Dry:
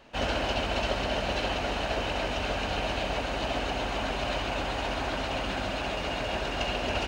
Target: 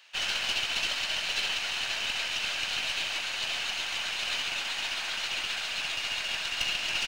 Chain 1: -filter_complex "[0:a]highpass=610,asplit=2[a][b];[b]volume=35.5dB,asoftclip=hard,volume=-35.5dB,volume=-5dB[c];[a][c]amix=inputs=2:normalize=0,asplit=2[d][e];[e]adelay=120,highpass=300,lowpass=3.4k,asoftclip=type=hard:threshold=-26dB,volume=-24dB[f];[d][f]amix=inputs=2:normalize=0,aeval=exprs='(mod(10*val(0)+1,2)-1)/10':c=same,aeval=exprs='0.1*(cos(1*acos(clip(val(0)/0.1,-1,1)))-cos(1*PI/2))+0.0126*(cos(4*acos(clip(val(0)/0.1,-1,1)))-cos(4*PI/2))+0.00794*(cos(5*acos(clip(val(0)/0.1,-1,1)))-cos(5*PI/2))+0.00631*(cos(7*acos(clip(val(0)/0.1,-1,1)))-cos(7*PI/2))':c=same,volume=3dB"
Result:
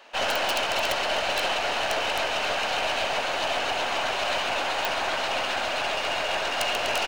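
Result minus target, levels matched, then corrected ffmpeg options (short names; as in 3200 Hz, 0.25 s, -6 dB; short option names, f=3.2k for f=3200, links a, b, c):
500 Hz band +15.0 dB
-filter_complex "[0:a]highpass=2.4k,asplit=2[a][b];[b]volume=35.5dB,asoftclip=hard,volume=-35.5dB,volume=-5dB[c];[a][c]amix=inputs=2:normalize=0,asplit=2[d][e];[e]adelay=120,highpass=300,lowpass=3.4k,asoftclip=type=hard:threshold=-26dB,volume=-24dB[f];[d][f]amix=inputs=2:normalize=0,aeval=exprs='(mod(10*val(0)+1,2)-1)/10':c=same,aeval=exprs='0.1*(cos(1*acos(clip(val(0)/0.1,-1,1)))-cos(1*PI/2))+0.0126*(cos(4*acos(clip(val(0)/0.1,-1,1)))-cos(4*PI/2))+0.00794*(cos(5*acos(clip(val(0)/0.1,-1,1)))-cos(5*PI/2))+0.00631*(cos(7*acos(clip(val(0)/0.1,-1,1)))-cos(7*PI/2))':c=same,volume=3dB"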